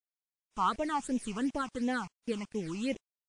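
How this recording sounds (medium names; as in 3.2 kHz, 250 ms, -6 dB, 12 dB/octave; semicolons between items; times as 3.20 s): tremolo saw up 0.62 Hz, depth 30%; a quantiser's noise floor 8-bit, dither none; phasing stages 8, 2.8 Hz, lowest notch 490–1400 Hz; WMA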